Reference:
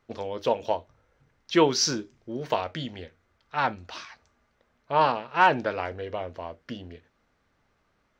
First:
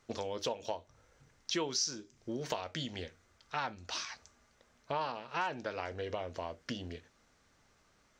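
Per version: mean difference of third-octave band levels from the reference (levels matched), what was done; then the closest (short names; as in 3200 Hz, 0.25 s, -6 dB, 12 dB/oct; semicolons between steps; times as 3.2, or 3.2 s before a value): 6.0 dB: bell 7000 Hz +12.5 dB 1.4 oct; compressor 4:1, threshold -35 dBFS, peak gain reduction 20.5 dB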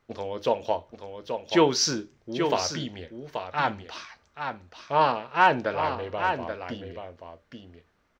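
2.5 dB: on a send: echo 0.831 s -7 dB; on the sum: Schroeder reverb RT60 0.3 s, combs from 32 ms, DRR 20 dB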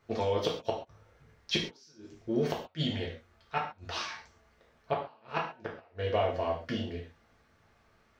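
10.0 dB: flipped gate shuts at -18 dBFS, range -38 dB; non-linear reverb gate 0.16 s falling, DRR -3 dB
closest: second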